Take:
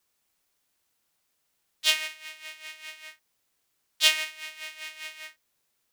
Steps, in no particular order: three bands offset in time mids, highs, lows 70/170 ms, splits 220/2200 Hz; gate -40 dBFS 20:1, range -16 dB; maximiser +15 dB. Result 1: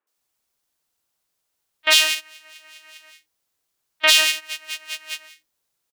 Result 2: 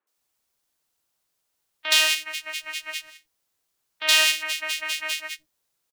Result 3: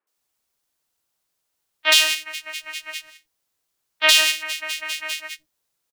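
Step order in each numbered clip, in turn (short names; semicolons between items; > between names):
three bands offset in time > gate > maximiser; gate > maximiser > three bands offset in time; gate > three bands offset in time > maximiser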